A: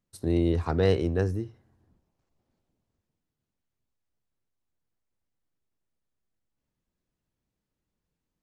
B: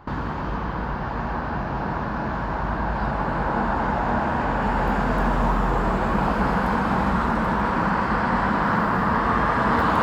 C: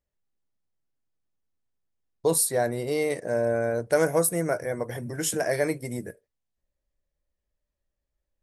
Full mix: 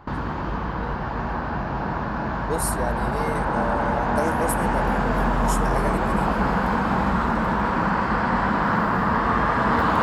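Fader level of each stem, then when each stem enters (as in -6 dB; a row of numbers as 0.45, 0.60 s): -18.5, 0.0, -5.0 dB; 0.00, 0.00, 0.25 s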